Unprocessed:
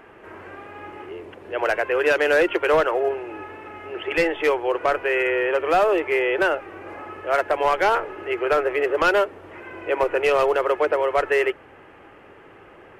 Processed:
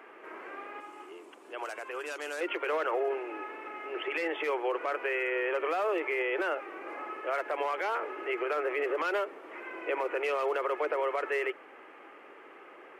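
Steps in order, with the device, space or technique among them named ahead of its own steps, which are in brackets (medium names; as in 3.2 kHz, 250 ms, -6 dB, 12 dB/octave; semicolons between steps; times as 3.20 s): laptop speaker (high-pass 270 Hz 24 dB/octave; peaking EQ 1.2 kHz +4.5 dB 0.36 oct; peaking EQ 2.2 kHz +5 dB 0.31 oct; peak limiter -17.5 dBFS, peak gain reduction 11 dB); 0.80–2.41 s: graphic EQ 125/500/2000/8000 Hz -10/-9/-9/+11 dB; trim -5 dB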